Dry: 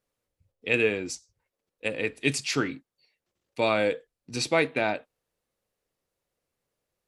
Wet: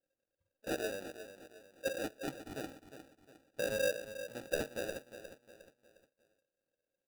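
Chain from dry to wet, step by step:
dynamic equaliser 450 Hz, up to −4 dB, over −33 dBFS, Q 0.77
in parallel at −2 dB: downward compressor, threshold −31 dBFS, peak gain reduction 11.5 dB
on the sum: surface crackle 340 per second −58 dBFS
formant resonators in series e
decimation without filtering 41×
on a send: repeating echo 357 ms, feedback 40%, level −11.5 dB
on the sum: level −3 dB

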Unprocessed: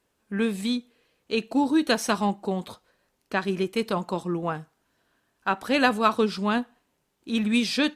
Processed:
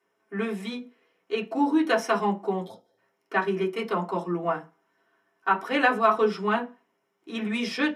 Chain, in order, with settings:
gain on a spectral selection 0:02.63–0:02.98, 910–3,100 Hz −18 dB
convolution reverb RT60 0.25 s, pre-delay 3 ms, DRR −4.5 dB
boost into a limiter −1 dB
level −8.5 dB

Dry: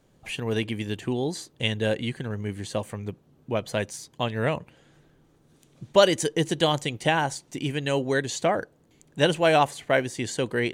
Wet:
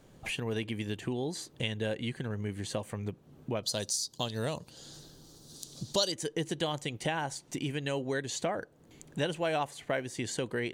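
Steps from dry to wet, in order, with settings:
0:03.63–0:06.12: high shelf with overshoot 3,200 Hz +12 dB, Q 3
downward compressor 2.5 to 1, threshold −41 dBFS, peak gain reduction 21 dB
level +4.5 dB

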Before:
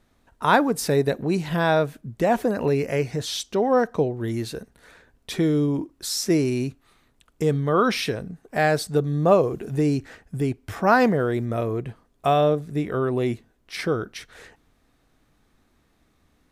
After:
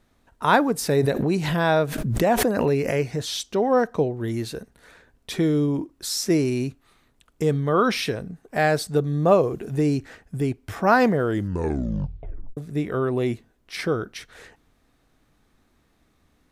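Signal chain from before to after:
0:01.00–0:02.95: background raised ahead of every attack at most 37 dB per second
0:11.23: tape stop 1.34 s

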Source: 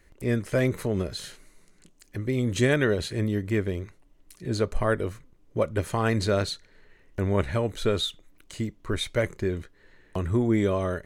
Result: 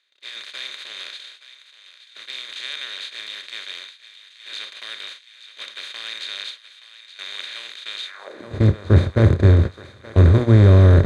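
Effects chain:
compressor on every frequency bin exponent 0.2
high-pass filter 44 Hz
mains-hum notches 60/120/180/240/300/360/420/480/540/600 Hz
noise gate −18 dBFS, range −32 dB
RIAA equalisation playback
on a send: feedback echo with a high-pass in the loop 873 ms, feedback 66%, high-pass 1,100 Hz, level −13 dB
on the sum: high-pass filter sweep 3,000 Hz → 83 Hz, 0:08.04–0:08.56
level −5 dB

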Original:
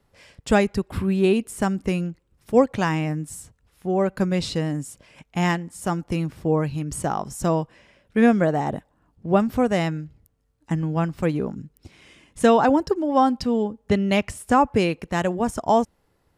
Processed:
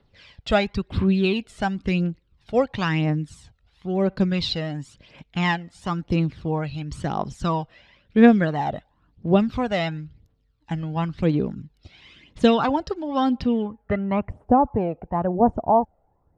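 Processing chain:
phase shifter 0.97 Hz, delay 1.6 ms, feedback 55%
low-pass filter sweep 3,900 Hz → 770 Hz, 0:13.31–0:14.35
level −3 dB

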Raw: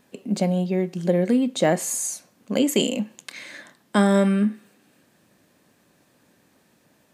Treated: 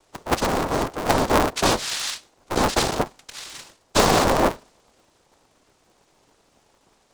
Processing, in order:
cochlear-implant simulation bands 2
dynamic equaliser 4,000 Hz, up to +5 dB, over −44 dBFS, Q 1.6
ring modulator with a square carrier 140 Hz

